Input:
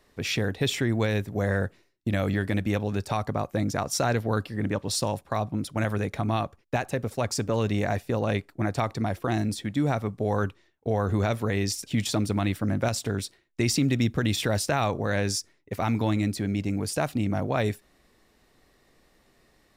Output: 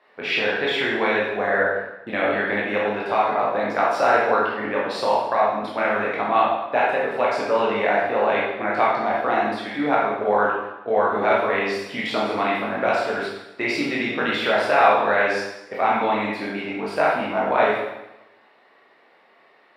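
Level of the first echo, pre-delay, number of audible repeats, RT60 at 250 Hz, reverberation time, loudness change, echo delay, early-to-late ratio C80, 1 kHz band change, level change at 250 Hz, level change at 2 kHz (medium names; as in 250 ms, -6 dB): no echo, 7 ms, no echo, 0.90 s, 0.95 s, +6.0 dB, no echo, 3.5 dB, +12.0 dB, -1.5 dB, +11.5 dB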